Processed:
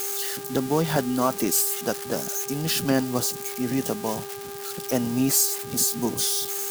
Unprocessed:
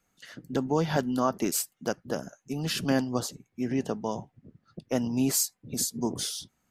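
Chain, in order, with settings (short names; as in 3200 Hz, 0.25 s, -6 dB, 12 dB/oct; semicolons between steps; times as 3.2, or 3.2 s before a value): switching spikes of -24.5 dBFS; buzz 400 Hz, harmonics 4, -41 dBFS -8 dB/oct; gain +3 dB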